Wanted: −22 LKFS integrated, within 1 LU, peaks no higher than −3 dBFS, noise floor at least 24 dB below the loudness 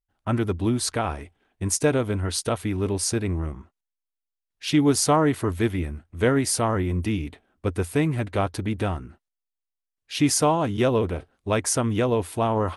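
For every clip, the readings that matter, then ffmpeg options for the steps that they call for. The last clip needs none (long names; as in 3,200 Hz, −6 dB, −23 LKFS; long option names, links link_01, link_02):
integrated loudness −24.5 LKFS; sample peak −8.0 dBFS; target loudness −22.0 LKFS
→ -af "volume=2.5dB"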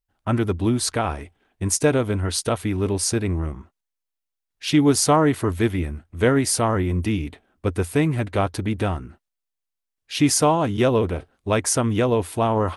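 integrated loudness −22.0 LKFS; sample peak −5.5 dBFS; background noise floor −83 dBFS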